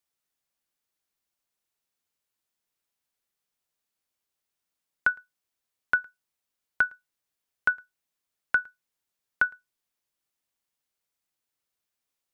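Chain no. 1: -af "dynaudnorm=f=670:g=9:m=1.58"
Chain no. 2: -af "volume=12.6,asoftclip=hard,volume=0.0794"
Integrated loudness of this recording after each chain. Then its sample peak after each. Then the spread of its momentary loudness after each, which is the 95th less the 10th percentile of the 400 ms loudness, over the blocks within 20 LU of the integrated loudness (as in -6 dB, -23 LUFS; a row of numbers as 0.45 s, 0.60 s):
-25.0 LUFS, -33.0 LUFS; -7.5 dBFS, -22.0 dBFS; 1 LU, 7 LU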